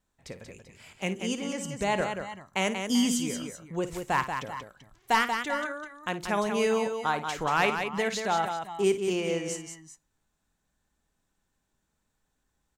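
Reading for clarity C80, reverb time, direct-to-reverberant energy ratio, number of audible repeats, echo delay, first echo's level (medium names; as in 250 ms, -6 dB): no reverb, no reverb, no reverb, 3, 54 ms, -12.5 dB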